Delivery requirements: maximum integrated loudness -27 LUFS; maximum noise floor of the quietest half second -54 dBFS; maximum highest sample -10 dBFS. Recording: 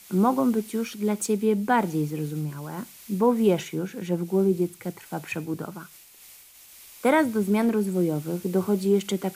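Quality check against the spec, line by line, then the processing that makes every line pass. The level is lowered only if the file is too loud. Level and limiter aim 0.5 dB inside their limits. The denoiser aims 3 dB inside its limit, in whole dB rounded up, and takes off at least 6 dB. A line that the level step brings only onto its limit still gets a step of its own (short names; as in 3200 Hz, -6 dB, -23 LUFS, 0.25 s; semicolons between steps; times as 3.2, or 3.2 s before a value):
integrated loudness -25.0 LUFS: fail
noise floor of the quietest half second -50 dBFS: fail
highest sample -8.0 dBFS: fail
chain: denoiser 6 dB, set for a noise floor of -50 dBFS; gain -2.5 dB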